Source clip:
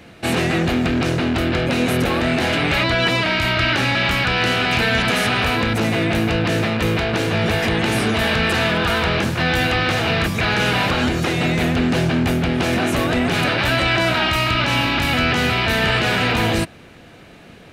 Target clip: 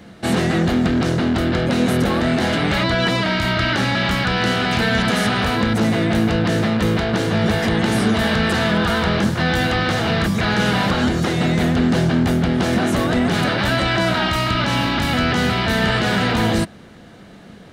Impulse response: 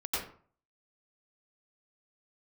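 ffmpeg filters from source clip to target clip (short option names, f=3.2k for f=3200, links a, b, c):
-af "equalizer=f=200:t=o:w=0.33:g=8,equalizer=f=2.5k:t=o:w=0.33:g=-9,equalizer=f=12.5k:t=o:w=0.33:g=-5"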